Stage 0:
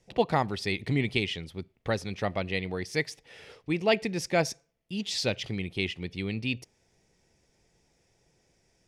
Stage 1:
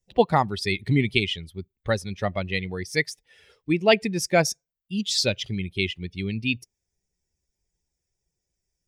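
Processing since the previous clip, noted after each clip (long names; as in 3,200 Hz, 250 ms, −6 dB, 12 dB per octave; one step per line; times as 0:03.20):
spectral dynamics exaggerated over time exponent 1.5
high-shelf EQ 6,600 Hz +5.5 dB
level +7.5 dB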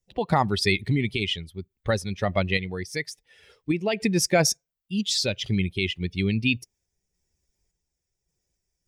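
brickwall limiter −15 dBFS, peak gain reduction 9.5 dB
sample-and-hold tremolo
level +5 dB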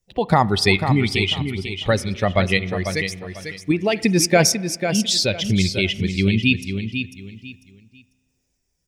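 on a send: repeating echo 496 ms, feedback 25%, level −8 dB
on the sum: spring reverb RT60 1.4 s, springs 31 ms, chirp 30 ms, DRR 18.5 dB
level +5.5 dB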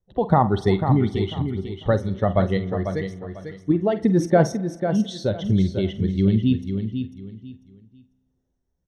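moving average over 18 samples
double-tracking delay 47 ms −13 dB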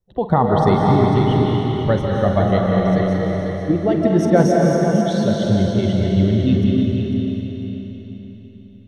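comb and all-pass reverb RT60 4.1 s, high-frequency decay 0.95×, pre-delay 115 ms, DRR −2.5 dB
level +1 dB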